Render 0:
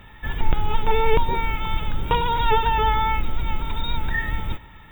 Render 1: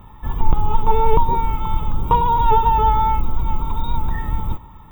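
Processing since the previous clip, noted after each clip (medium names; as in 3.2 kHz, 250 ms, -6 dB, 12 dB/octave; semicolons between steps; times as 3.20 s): FFT filter 190 Hz 0 dB, 640 Hz -5 dB, 1.1 kHz +5 dB, 1.6 kHz -17 dB, 6.8 kHz -9 dB, 14 kHz 0 dB; trim +4.5 dB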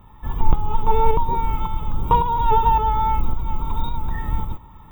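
tremolo saw up 1.8 Hz, depth 50%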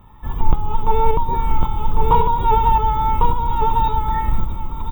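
delay 1101 ms -3 dB; trim +1 dB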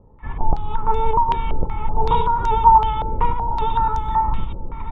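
step-sequenced low-pass 5.3 Hz 510–6100 Hz; trim -4 dB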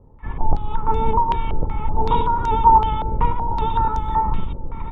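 octave divider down 1 oct, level 0 dB; trim -1 dB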